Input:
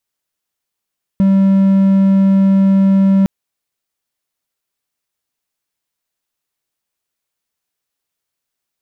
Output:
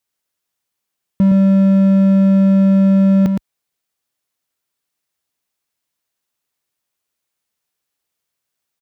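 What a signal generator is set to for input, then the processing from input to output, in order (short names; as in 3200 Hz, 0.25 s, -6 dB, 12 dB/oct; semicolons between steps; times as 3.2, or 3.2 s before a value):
tone triangle 194 Hz -5.5 dBFS 2.06 s
HPF 44 Hz; echo 0.115 s -5.5 dB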